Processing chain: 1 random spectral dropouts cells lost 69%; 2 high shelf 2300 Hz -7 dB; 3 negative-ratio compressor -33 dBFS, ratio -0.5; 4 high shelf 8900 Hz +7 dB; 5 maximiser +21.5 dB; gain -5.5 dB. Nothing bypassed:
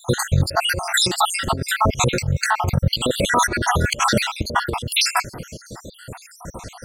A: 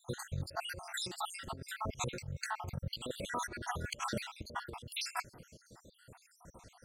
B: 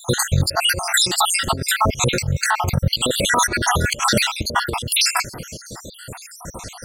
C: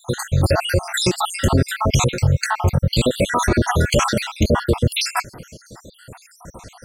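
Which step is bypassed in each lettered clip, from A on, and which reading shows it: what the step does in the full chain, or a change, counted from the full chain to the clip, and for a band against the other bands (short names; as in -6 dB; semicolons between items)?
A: 5, crest factor change +6.0 dB; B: 2, 8 kHz band +4.5 dB; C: 3, crest factor change -1.5 dB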